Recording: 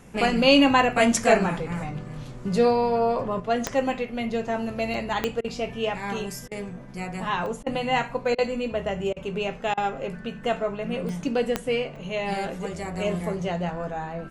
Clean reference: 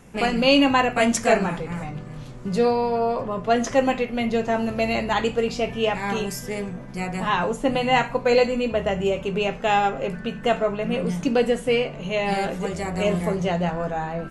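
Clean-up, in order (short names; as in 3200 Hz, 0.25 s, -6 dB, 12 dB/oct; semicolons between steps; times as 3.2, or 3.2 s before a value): de-click; interpolate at 4.94/7.46/11.09/11.96, 1.9 ms; interpolate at 5.41/6.48/7.63/8.35/9.13/9.74, 33 ms; gain 0 dB, from 3.4 s +4.5 dB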